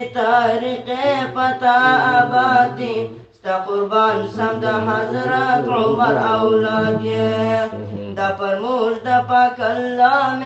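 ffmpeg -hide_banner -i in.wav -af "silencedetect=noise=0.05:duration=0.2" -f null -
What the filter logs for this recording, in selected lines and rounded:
silence_start: 3.11
silence_end: 3.45 | silence_duration: 0.34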